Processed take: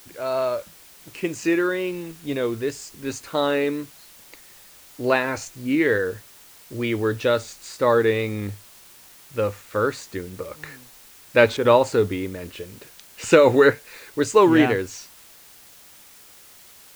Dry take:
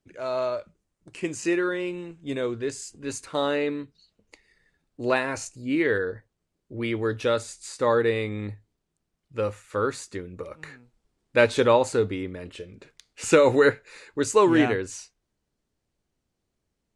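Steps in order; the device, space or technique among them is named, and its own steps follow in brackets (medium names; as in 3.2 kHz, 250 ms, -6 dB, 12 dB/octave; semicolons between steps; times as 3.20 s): worn cassette (low-pass 6.4 kHz; wow and flutter; level dips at 11.57 s, 77 ms -6 dB; white noise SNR 25 dB); trim +3.5 dB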